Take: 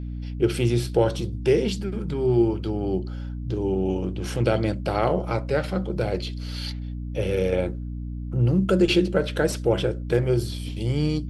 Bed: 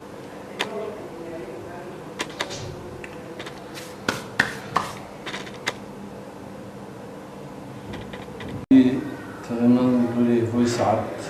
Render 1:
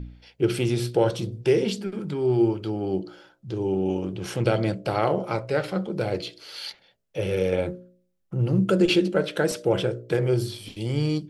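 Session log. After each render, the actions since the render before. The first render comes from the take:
hum removal 60 Hz, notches 11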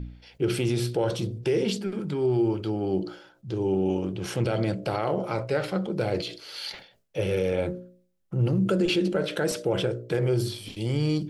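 brickwall limiter −16 dBFS, peak gain reduction 8.5 dB
level that may fall only so fast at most 110 dB per second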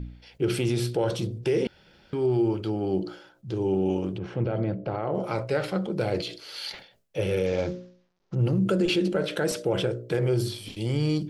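0:01.67–0:02.13: fill with room tone
0:04.18–0:05.15: head-to-tape spacing loss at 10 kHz 39 dB
0:07.46–0:08.35: variable-slope delta modulation 32 kbit/s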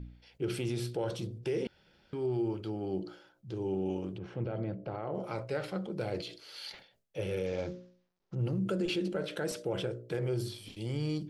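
level −8.5 dB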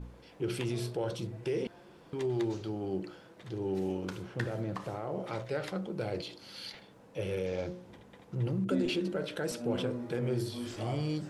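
mix in bed −19.5 dB

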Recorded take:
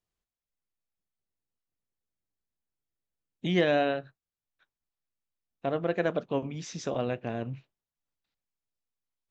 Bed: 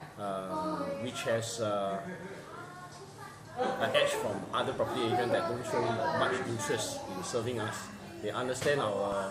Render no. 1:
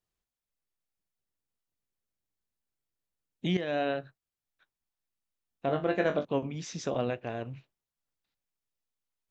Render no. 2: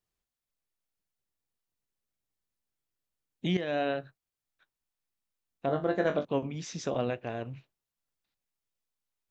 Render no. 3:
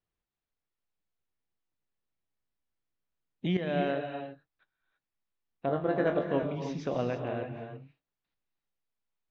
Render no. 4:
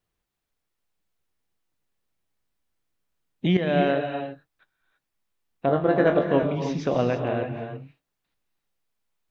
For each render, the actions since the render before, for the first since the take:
0:03.57–0:04.01: fade in, from −14.5 dB; 0:05.67–0:06.25: flutter between parallel walls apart 3.5 metres, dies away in 0.22 s; 0:07.10–0:07.56: parametric band 190 Hz −7.5 dB 1.3 octaves
0:05.66–0:06.07: parametric band 2,500 Hz −13.5 dB 0.44 octaves
high-frequency loss of the air 210 metres; reverb whose tail is shaped and stops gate 360 ms rising, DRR 5.5 dB
level +8 dB

